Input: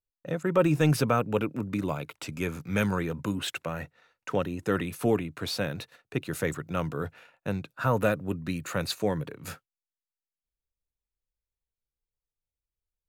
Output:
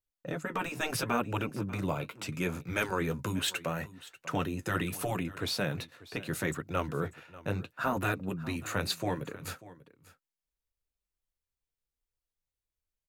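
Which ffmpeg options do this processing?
ffmpeg -i in.wav -filter_complex "[0:a]asettb=1/sr,asplit=3[link_01][link_02][link_03];[link_01]atrim=end=3.044[link_04];[link_02]atrim=start=3.04:end=5.23,asetpts=PTS-STARTPTS,afade=type=in:duration=0.004:curve=qsin,afade=type=out:start_time=2.186:duration=0.004:curve=qsin,highshelf=frequency=4600:gain=5.5[link_05];[link_03]atrim=start=5.226[link_06];[link_04][link_05]acrossfade=duration=0.004:curve1=hsin:curve2=qsin[link_07];[link_07][link_06]acrossfade=duration=0.004:curve1=qsin:curve2=hsin,afftfilt=real='re*lt(hypot(re,im),0.282)':imag='im*lt(hypot(re,im),0.282)':win_size=1024:overlap=0.75,flanger=delay=1.9:depth=9.8:regen=-48:speed=0.74:shape=triangular,aecho=1:1:591:0.119,volume=3.5dB" out.wav

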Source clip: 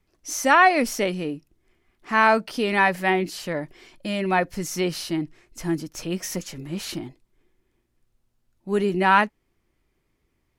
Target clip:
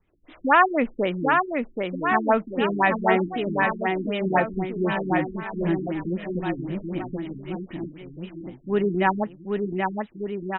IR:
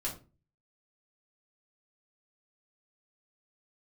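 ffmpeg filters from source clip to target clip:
-af "aecho=1:1:780|1482|2114|2682|3194:0.631|0.398|0.251|0.158|0.1,afftfilt=real='re*lt(b*sr/1024,360*pow(4000/360,0.5+0.5*sin(2*PI*3.9*pts/sr)))':imag='im*lt(b*sr/1024,360*pow(4000/360,0.5+0.5*sin(2*PI*3.9*pts/sr)))':win_size=1024:overlap=0.75"

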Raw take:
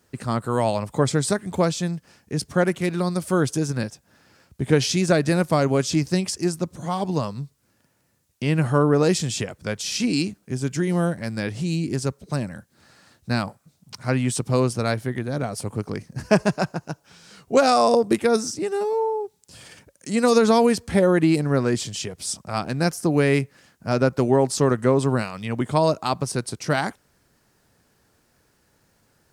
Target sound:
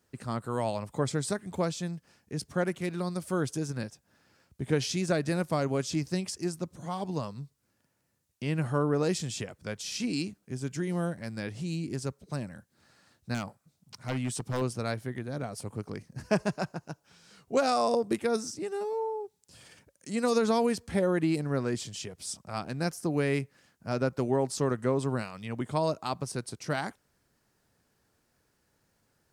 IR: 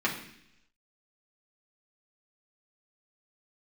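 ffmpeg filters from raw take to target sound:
-filter_complex "[0:a]asettb=1/sr,asplit=3[link_01][link_02][link_03];[link_01]atrim=end=13.344[link_04];[link_02]atrim=start=13.34:end=14.62,asetpts=PTS-STARTPTS,afade=type=in:duration=0.004:curve=qsin,afade=type=out:start_time=1.276:duration=0.004:curve=qsin,aeval=exprs='0.178*(abs(mod(val(0)/0.178+3,4)-2)-1)':channel_layout=same[link_05];[link_03]atrim=start=14.616[link_06];[link_04][link_05]acrossfade=duration=0.004:curve1=hsin:curve2=qsin[link_07];[link_07][link_06]acrossfade=duration=0.004:curve1=qsin:curve2=hsin,volume=-9dB"

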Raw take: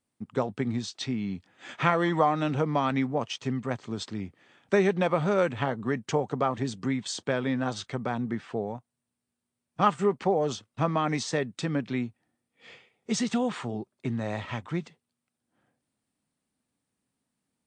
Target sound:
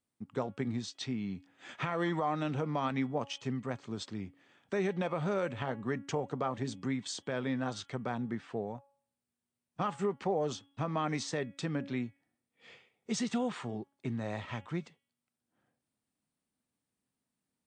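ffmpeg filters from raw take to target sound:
ffmpeg -i in.wav -af "alimiter=limit=-16.5dB:level=0:latency=1:release=80,bandreject=frequency=278.8:width_type=h:width=4,bandreject=frequency=557.6:width_type=h:width=4,bandreject=frequency=836.4:width_type=h:width=4,bandreject=frequency=1115.2:width_type=h:width=4,bandreject=frequency=1394:width_type=h:width=4,bandreject=frequency=1672.8:width_type=h:width=4,bandreject=frequency=1951.6:width_type=h:width=4,bandreject=frequency=2230.4:width_type=h:width=4,bandreject=frequency=2509.2:width_type=h:width=4,bandreject=frequency=2788:width_type=h:width=4,bandreject=frequency=3066.8:width_type=h:width=4,bandreject=frequency=3345.6:width_type=h:width=4,volume=-5.5dB" out.wav

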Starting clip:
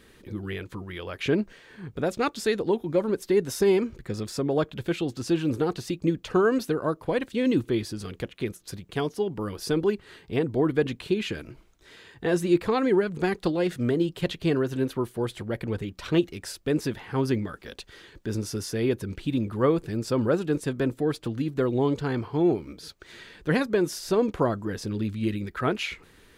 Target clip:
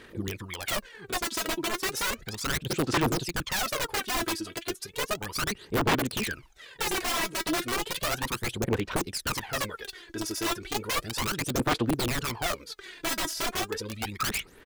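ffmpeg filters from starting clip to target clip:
ffmpeg -i in.wav -af "atempo=1.8,lowshelf=frequency=380:gain=-11,aeval=exprs='(mod(23.7*val(0)+1,2)-1)/23.7':channel_layout=same,aphaser=in_gain=1:out_gain=1:delay=3.1:decay=0.68:speed=0.34:type=sinusoidal,volume=1.5dB" out.wav

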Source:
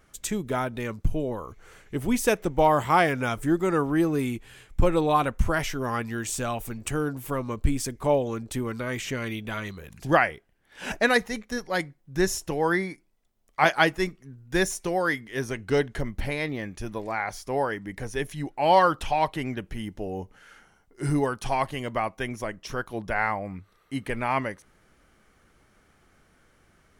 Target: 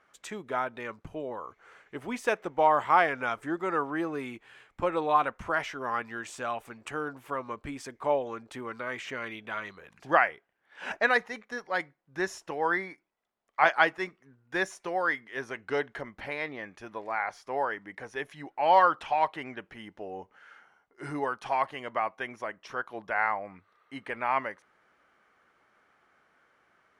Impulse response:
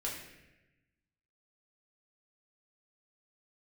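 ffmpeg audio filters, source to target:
-af "bandpass=frequency=1200:width_type=q:width=0.79:csg=0"

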